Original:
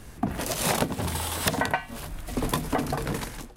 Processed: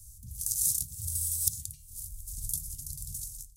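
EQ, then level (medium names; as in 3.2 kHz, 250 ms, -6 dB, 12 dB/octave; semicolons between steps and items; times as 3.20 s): inverse Chebyshev band-stop 420–1600 Hz, stop band 80 dB; bass shelf 140 Hz -12 dB; +4.5 dB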